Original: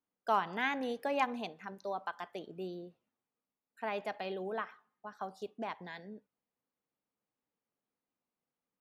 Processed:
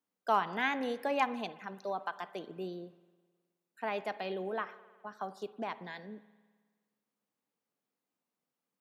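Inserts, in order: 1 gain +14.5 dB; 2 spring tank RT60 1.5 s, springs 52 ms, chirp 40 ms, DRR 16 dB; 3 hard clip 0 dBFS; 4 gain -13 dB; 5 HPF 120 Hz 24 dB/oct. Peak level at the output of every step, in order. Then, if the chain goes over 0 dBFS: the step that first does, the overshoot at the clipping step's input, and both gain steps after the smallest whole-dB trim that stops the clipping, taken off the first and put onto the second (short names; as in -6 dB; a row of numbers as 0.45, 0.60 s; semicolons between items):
-4.5, -4.0, -4.0, -17.0, -16.5 dBFS; no overload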